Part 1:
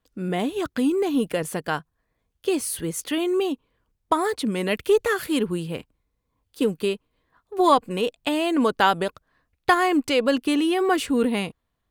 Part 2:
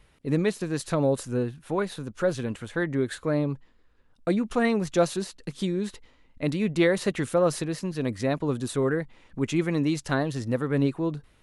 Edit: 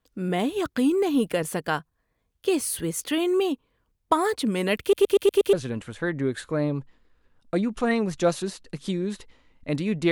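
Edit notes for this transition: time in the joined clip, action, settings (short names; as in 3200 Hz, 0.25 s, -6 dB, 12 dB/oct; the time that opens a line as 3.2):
part 1
4.81 stutter in place 0.12 s, 6 plays
5.53 switch to part 2 from 2.27 s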